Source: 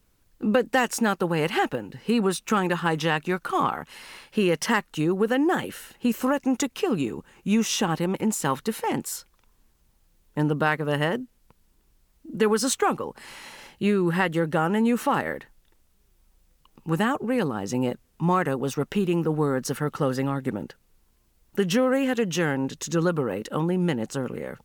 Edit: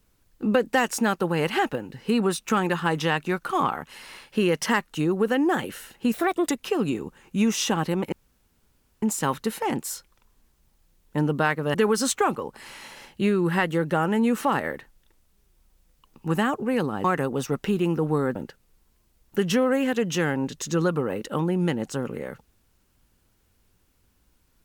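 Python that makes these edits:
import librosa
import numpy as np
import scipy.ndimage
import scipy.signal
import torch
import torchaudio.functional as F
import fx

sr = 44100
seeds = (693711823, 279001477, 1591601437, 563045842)

y = fx.edit(x, sr, fx.speed_span(start_s=6.14, length_s=0.47, speed=1.33),
    fx.insert_room_tone(at_s=8.24, length_s=0.9),
    fx.cut(start_s=10.96, length_s=1.4),
    fx.cut(start_s=17.66, length_s=0.66),
    fx.cut(start_s=19.63, length_s=0.93), tone=tone)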